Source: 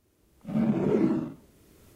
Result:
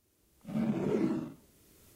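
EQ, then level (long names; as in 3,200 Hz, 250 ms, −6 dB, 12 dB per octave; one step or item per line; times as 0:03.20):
high-shelf EQ 2,800 Hz +8 dB
−6.5 dB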